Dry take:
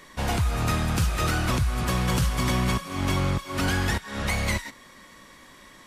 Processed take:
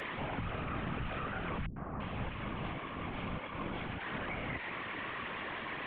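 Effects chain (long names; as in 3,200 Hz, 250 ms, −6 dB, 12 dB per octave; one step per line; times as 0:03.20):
linear delta modulator 16 kbit/s, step −30.5 dBFS
high-pass filter 150 Hz 6 dB per octave
brickwall limiter −27.5 dBFS, peak gain reduction 11 dB
random phases in short frames
0:01.66–0:04.00: three-band delay without the direct sound lows, mids, highs 100/340 ms, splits 340/1,500 Hz
level −3 dB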